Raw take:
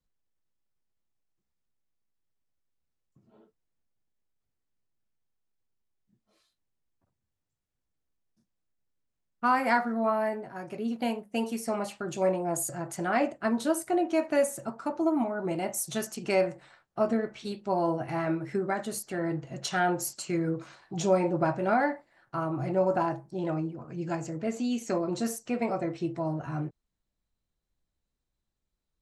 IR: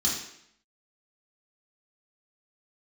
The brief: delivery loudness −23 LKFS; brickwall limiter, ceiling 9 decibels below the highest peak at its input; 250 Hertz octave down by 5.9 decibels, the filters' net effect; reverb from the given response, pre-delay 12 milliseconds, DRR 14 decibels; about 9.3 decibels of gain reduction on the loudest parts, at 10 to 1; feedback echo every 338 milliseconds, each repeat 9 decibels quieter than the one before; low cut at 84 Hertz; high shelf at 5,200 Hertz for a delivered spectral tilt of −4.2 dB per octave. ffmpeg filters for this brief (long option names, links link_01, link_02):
-filter_complex "[0:a]highpass=84,equalizer=frequency=250:width_type=o:gain=-8.5,highshelf=frequency=5200:gain=7.5,acompressor=threshold=-30dB:ratio=10,alimiter=level_in=3dB:limit=-24dB:level=0:latency=1,volume=-3dB,aecho=1:1:338|676|1014|1352:0.355|0.124|0.0435|0.0152,asplit=2[link_01][link_02];[1:a]atrim=start_sample=2205,adelay=12[link_03];[link_02][link_03]afir=irnorm=-1:irlink=0,volume=-22dB[link_04];[link_01][link_04]amix=inputs=2:normalize=0,volume=13.5dB"